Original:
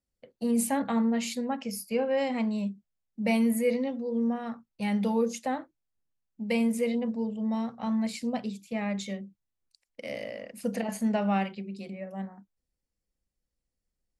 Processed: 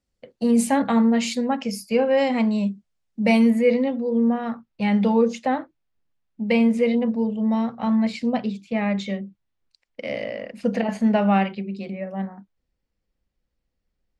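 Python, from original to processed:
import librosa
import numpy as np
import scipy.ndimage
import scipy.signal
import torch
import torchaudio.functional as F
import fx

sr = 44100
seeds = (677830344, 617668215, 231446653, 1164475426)

y = fx.lowpass(x, sr, hz=fx.steps((0.0, 7400.0), (3.5, 3800.0)), slope=12)
y = y * librosa.db_to_amplitude(8.0)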